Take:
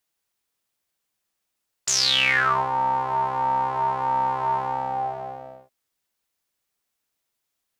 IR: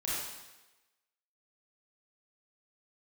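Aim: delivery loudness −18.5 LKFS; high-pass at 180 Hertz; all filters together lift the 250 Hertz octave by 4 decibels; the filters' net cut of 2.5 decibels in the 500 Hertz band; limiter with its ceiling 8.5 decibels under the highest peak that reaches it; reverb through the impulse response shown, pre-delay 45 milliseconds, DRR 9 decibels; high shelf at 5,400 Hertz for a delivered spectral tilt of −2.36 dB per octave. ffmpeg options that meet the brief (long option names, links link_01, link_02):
-filter_complex "[0:a]highpass=180,equalizer=frequency=250:width_type=o:gain=7.5,equalizer=frequency=500:width_type=o:gain=-5,highshelf=frequency=5400:gain=-4.5,alimiter=limit=-16.5dB:level=0:latency=1,asplit=2[link_01][link_02];[1:a]atrim=start_sample=2205,adelay=45[link_03];[link_02][link_03]afir=irnorm=-1:irlink=0,volume=-14dB[link_04];[link_01][link_04]amix=inputs=2:normalize=0,volume=7dB"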